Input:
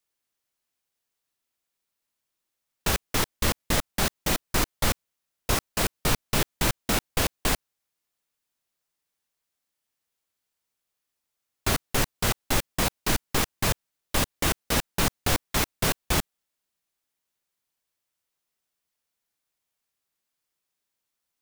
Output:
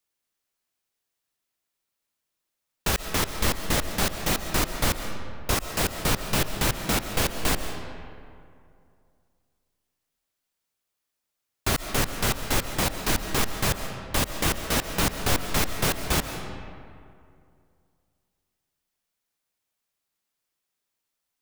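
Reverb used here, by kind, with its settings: algorithmic reverb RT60 2.4 s, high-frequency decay 0.55×, pre-delay 95 ms, DRR 7 dB

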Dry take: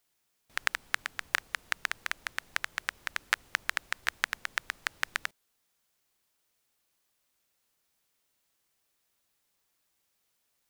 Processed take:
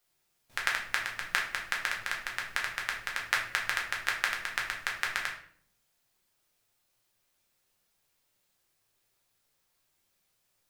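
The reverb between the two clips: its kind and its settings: simulated room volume 75 m³, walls mixed, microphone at 0.91 m; trim -2 dB

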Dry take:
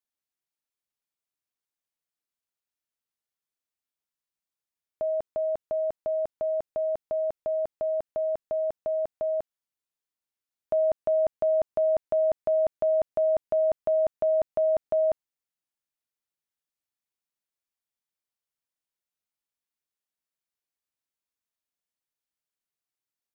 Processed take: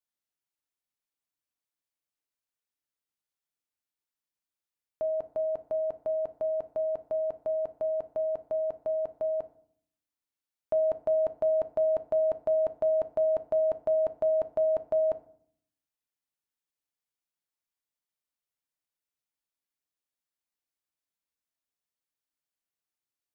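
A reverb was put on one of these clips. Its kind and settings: FDN reverb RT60 0.6 s, low-frequency decay 1.5×, high-frequency decay 0.6×, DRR 10.5 dB; trim -2.5 dB

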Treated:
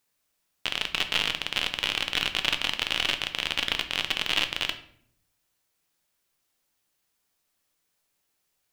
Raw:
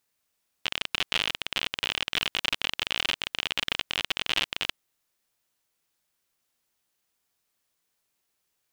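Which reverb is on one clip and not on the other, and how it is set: simulated room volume 100 m³, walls mixed, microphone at 0.37 m; trim +1 dB

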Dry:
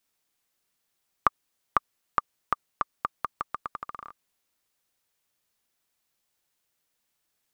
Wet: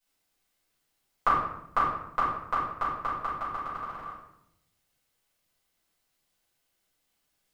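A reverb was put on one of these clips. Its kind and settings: simulated room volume 210 m³, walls mixed, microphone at 5.1 m; trim -11 dB

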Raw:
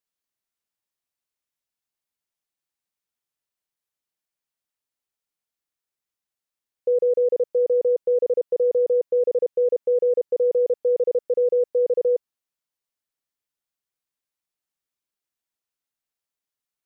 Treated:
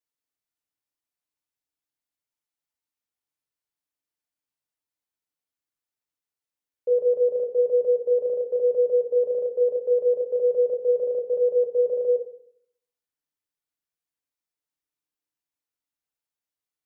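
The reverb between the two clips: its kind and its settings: FDN reverb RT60 0.65 s, low-frequency decay 1.2×, high-frequency decay 0.5×, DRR 2.5 dB; trim -5.5 dB

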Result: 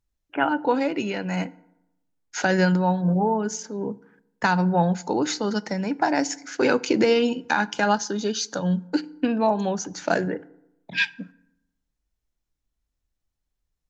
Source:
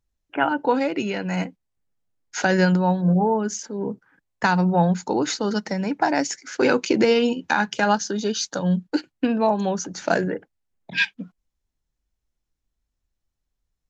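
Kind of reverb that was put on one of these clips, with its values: FDN reverb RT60 0.85 s, low-frequency decay 1.1×, high-frequency decay 0.55×, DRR 18 dB; trim -1.5 dB

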